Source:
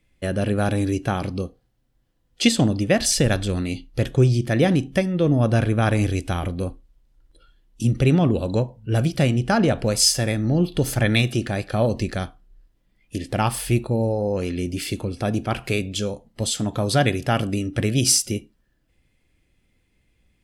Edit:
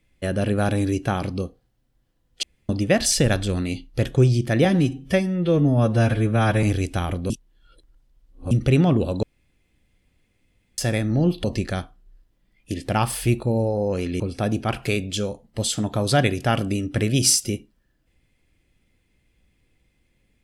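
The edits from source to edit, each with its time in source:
0:02.43–0:02.69: fill with room tone
0:04.65–0:05.97: time-stretch 1.5×
0:06.64–0:07.85: reverse
0:08.57–0:10.12: fill with room tone
0:10.78–0:11.88: remove
0:14.64–0:15.02: remove

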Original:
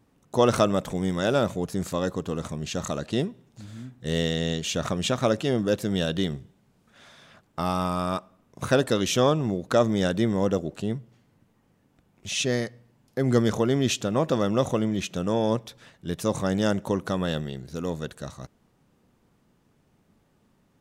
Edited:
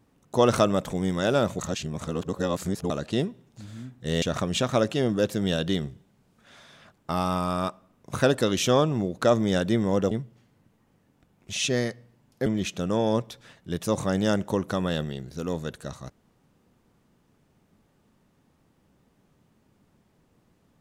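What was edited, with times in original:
0:01.59–0:02.90: reverse
0:04.22–0:04.71: remove
0:10.60–0:10.87: remove
0:13.22–0:14.83: remove

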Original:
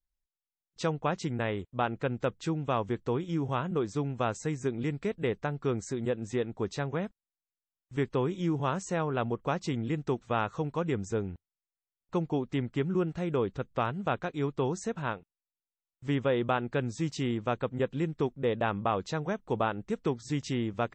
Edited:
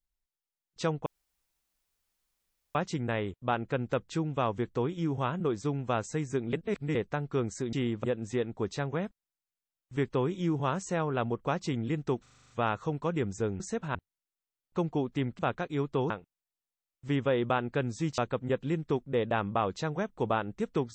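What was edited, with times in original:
0:01.06: splice in room tone 1.69 s
0:04.84–0:05.26: reverse
0:10.22: stutter 0.04 s, 8 plays
0:12.76–0:14.03: remove
0:14.74–0:15.09: move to 0:11.32
0:17.17–0:17.48: move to 0:06.04

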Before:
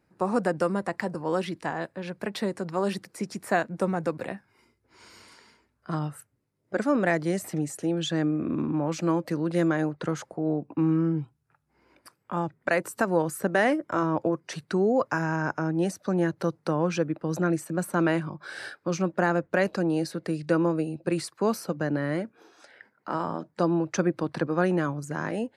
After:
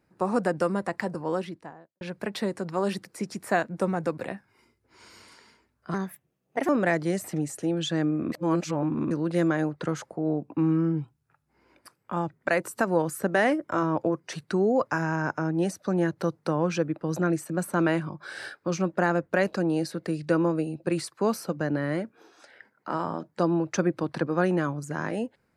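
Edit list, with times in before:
0:01.12–0:02.01: fade out and dull
0:05.94–0:06.89: play speed 127%
0:08.52–0:09.31: reverse

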